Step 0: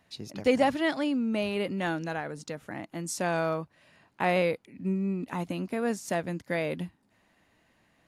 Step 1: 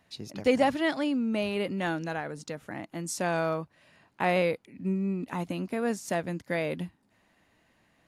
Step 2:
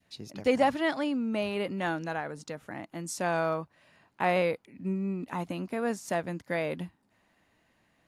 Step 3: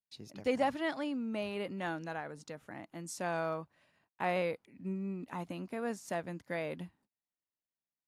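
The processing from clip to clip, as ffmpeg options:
-af anull
-af "adynamicequalizer=threshold=0.01:dfrequency=1000:dqfactor=0.83:tfrequency=1000:tqfactor=0.83:attack=5:release=100:ratio=0.375:range=2:mode=boostabove:tftype=bell,volume=-2.5dB"
-af "agate=range=-30dB:threshold=-60dB:ratio=16:detection=peak,volume=-6.5dB"

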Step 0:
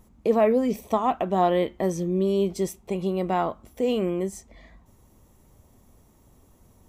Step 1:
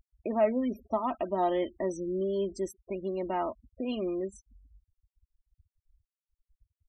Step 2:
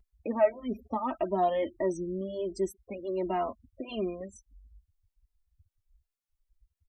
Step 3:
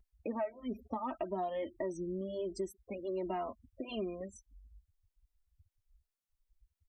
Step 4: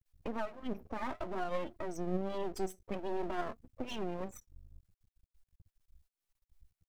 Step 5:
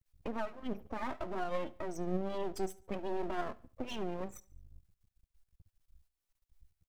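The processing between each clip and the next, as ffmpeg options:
-af "afftfilt=real='re*gte(hypot(re,im),0.02)':imag='im*gte(hypot(re,im),0.02)':win_size=1024:overlap=0.75,aecho=1:1:3.2:0.7,volume=-8dB"
-filter_complex "[0:a]asplit=2[a][b];[b]adelay=2.5,afreqshift=1.5[c];[a][c]amix=inputs=2:normalize=1,volume=3.5dB"
-af "acompressor=threshold=-31dB:ratio=6,volume=-2.5dB"
-af "alimiter=level_in=8.5dB:limit=-24dB:level=0:latency=1:release=88,volume=-8.5dB,flanger=delay=3.9:depth=6.9:regen=72:speed=0.54:shape=sinusoidal,aeval=exprs='max(val(0),0)':c=same,volume=11.5dB"
-af "aecho=1:1:71|142|213:0.0794|0.0334|0.014"

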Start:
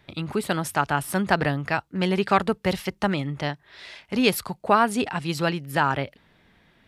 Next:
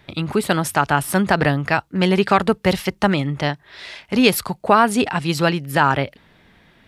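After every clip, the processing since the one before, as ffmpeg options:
-af "alimiter=level_in=7.5dB:limit=-1dB:release=50:level=0:latency=1,volume=-1dB"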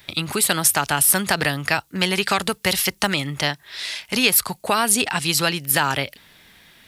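-filter_complex "[0:a]acrossover=split=830|2200[a][b][c];[a]acompressor=threshold=-18dB:ratio=4[d];[b]acompressor=threshold=-24dB:ratio=4[e];[c]acompressor=threshold=-29dB:ratio=4[f];[d][e][f]amix=inputs=3:normalize=0,crystalizer=i=8:c=0,volume=-4.5dB"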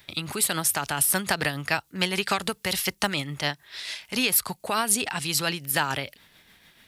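-af "tremolo=f=6.9:d=0.4,volume=-4dB"

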